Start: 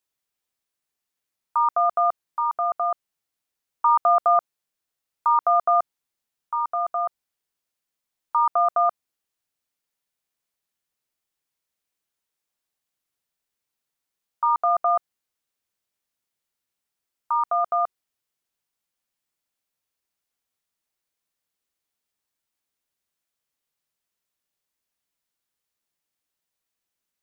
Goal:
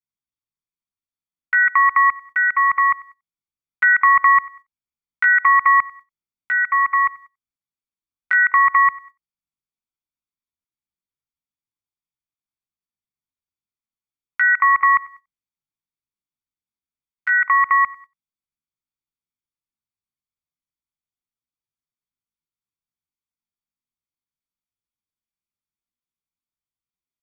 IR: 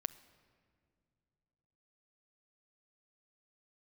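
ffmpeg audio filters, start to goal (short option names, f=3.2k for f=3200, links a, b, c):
-filter_complex "[0:a]bass=f=250:g=8,treble=f=4k:g=-6,aecho=1:1:1.4:0.77,acompressor=threshold=-19dB:ratio=2,adynamicequalizer=threshold=0.0178:dfrequency=1300:dqfactor=2.5:tfrequency=1300:tqfactor=2.5:attack=5:release=100:ratio=0.375:range=1.5:mode=boostabove:tftype=bell,asplit=2[a][b];[b]aecho=0:1:96|192|288:0.075|0.0277|0.0103[c];[a][c]amix=inputs=2:normalize=0,agate=range=-18dB:threshold=-44dB:ratio=16:detection=peak,asetrate=70004,aresample=44100,atempo=0.629961,volume=5dB"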